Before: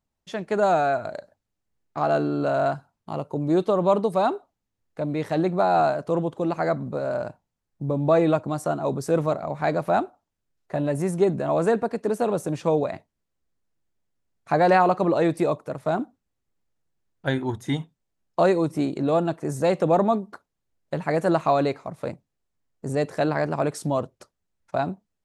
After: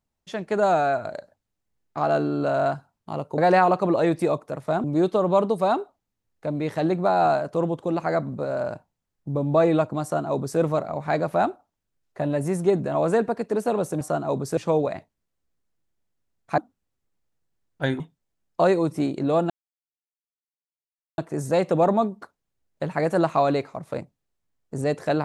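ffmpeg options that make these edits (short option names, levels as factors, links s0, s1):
-filter_complex "[0:a]asplit=8[s0][s1][s2][s3][s4][s5][s6][s7];[s0]atrim=end=3.382[s8];[s1]atrim=start=14.558:end=16.022[s9];[s2]atrim=start=3.378:end=12.552[s10];[s3]atrim=start=8.568:end=9.132[s11];[s4]atrim=start=12.548:end=14.562[s12];[s5]atrim=start=16.018:end=17.442[s13];[s6]atrim=start=17.788:end=19.29,asetpts=PTS-STARTPTS,afade=t=out:st=1.498:d=0.004:c=hsin,apad=pad_dur=1.68[s14];[s7]atrim=start=19.29,asetpts=PTS-STARTPTS,afade=t=in:d=0.004:c=hsin[s15];[s8][s9]acrossfade=d=0.004:c1=hsin:c2=hsin[s16];[s16][s10]acrossfade=d=0.004:c1=hsin:c2=hsin[s17];[s17][s11]acrossfade=d=0.004:c1=hsin:c2=hsin[s18];[s18][s12]acrossfade=d=0.004:c1=hsin:c2=hsin[s19];[s19][s13]acrossfade=d=0.004:c1=hsin:c2=hsin[s20];[s14][s15]concat=n=2:v=0:a=1[s21];[s20][s21]acrossfade=d=0.004:c1=hsin:c2=hsin"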